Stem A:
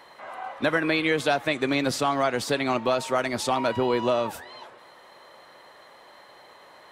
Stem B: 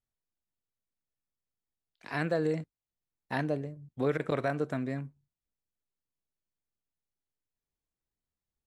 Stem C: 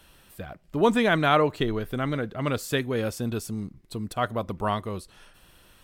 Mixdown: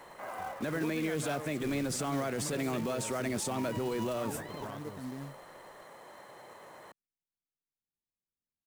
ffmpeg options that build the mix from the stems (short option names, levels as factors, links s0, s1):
-filter_complex "[0:a]acrossover=split=590|1300[s0][s1][s2];[s0]acompressor=threshold=0.0447:ratio=4[s3];[s1]acompressor=threshold=0.00631:ratio=4[s4];[s2]acompressor=threshold=0.0316:ratio=4[s5];[s3][s4][s5]amix=inputs=3:normalize=0,equalizer=f=250:t=o:w=1:g=-7,equalizer=f=4000:t=o:w=1:g=-8,equalizer=f=8000:t=o:w=1:g=7,volume=0.75[s6];[1:a]alimiter=level_in=1.19:limit=0.0631:level=0:latency=1,volume=0.841,adelay=250,volume=0.168[s7];[2:a]acompressor=threshold=0.0631:ratio=6,volume=0.168[s8];[s6][s7]amix=inputs=2:normalize=0,equalizer=f=210:t=o:w=2.3:g=11,alimiter=level_in=1.26:limit=0.0631:level=0:latency=1:release=16,volume=0.794,volume=1[s9];[s8][s9]amix=inputs=2:normalize=0,acrusher=bits=4:mode=log:mix=0:aa=0.000001"